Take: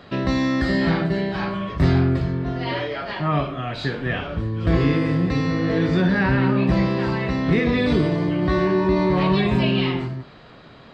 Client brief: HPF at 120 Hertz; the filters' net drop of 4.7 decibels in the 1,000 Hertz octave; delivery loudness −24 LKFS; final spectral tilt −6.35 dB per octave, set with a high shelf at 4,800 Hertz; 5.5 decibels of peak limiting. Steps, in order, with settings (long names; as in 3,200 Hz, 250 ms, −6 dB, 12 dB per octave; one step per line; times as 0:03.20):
high-pass filter 120 Hz
parametric band 1,000 Hz −5.5 dB
high-shelf EQ 4,800 Hz −9 dB
brickwall limiter −14.5 dBFS